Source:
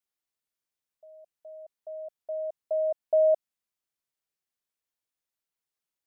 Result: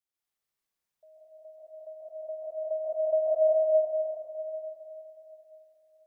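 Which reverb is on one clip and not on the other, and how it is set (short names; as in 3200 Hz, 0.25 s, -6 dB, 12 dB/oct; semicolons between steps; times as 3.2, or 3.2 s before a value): plate-style reverb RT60 3.4 s, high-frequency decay 0.65×, pre-delay 0.115 s, DRR -8.5 dB; gain -5.5 dB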